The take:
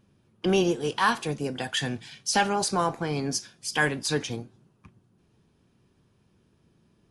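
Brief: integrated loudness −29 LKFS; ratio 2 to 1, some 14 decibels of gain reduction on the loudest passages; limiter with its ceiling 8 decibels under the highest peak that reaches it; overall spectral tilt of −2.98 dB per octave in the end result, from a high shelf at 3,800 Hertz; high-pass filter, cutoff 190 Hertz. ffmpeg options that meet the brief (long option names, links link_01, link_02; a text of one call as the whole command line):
ffmpeg -i in.wav -af "highpass=190,highshelf=frequency=3800:gain=3,acompressor=threshold=-45dB:ratio=2,volume=12dB,alimiter=limit=-18dB:level=0:latency=1" out.wav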